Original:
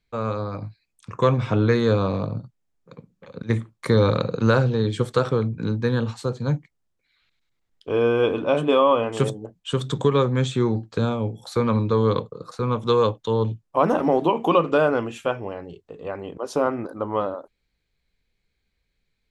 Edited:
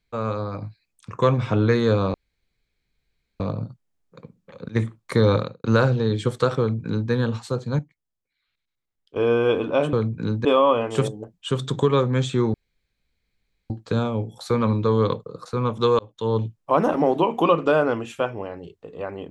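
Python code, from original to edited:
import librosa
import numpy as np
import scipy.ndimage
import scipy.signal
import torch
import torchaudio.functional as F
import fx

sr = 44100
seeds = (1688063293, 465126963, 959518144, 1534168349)

y = fx.edit(x, sr, fx.insert_room_tone(at_s=2.14, length_s=1.26),
    fx.fade_out_span(start_s=4.1, length_s=0.28, curve='qua'),
    fx.duplicate(start_s=5.33, length_s=0.52, to_s=8.67),
    fx.clip_gain(start_s=6.53, length_s=1.37, db=-9.5),
    fx.insert_room_tone(at_s=10.76, length_s=1.16),
    fx.fade_in_span(start_s=13.05, length_s=0.34), tone=tone)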